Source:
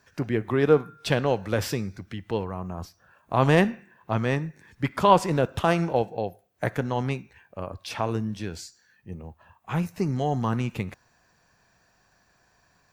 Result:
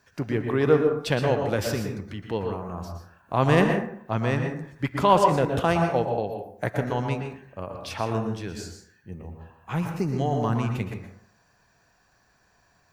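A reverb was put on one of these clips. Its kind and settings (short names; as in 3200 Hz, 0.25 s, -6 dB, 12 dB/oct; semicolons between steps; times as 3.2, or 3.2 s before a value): plate-style reverb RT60 0.6 s, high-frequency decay 0.45×, pre-delay 0.105 s, DRR 4 dB; gain -1 dB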